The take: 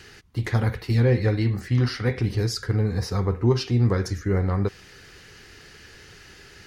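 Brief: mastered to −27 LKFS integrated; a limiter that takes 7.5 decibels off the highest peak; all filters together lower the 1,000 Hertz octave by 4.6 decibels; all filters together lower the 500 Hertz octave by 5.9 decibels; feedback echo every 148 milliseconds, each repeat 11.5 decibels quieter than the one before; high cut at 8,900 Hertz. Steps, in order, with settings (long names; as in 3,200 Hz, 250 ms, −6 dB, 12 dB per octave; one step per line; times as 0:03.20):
low-pass filter 8,900 Hz
parametric band 500 Hz −7 dB
parametric band 1,000 Hz −4 dB
brickwall limiter −17.5 dBFS
repeating echo 148 ms, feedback 27%, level −11.5 dB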